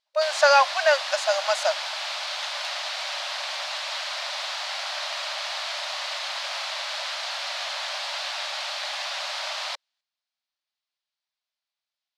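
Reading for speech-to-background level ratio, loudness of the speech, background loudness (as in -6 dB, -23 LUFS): 7.5 dB, -21.5 LUFS, -29.0 LUFS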